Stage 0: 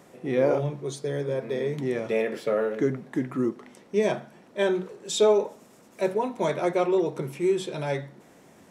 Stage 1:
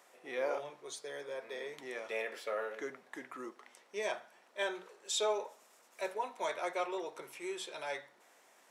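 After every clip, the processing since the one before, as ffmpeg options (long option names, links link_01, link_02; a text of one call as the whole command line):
ffmpeg -i in.wav -af "highpass=790,volume=-5dB" out.wav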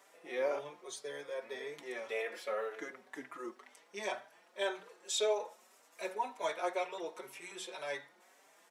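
ffmpeg -i in.wav -filter_complex "[0:a]asplit=2[link_01][link_02];[link_02]adelay=4.7,afreqshift=1.9[link_03];[link_01][link_03]amix=inputs=2:normalize=1,volume=3dB" out.wav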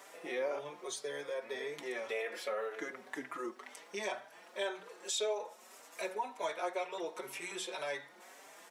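ffmpeg -i in.wav -af "acompressor=threshold=-51dB:ratio=2,volume=9dB" out.wav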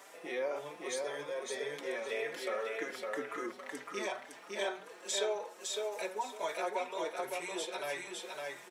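ffmpeg -i in.wav -af "aecho=1:1:559|1118|1677:0.708|0.163|0.0375" out.wav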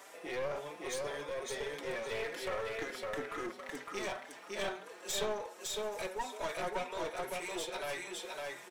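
ffmpeg -i in.wav -af "aeval=exprs='clip(val(0),-1,0.01)':channel_layout=same,volume=1dB" out.wav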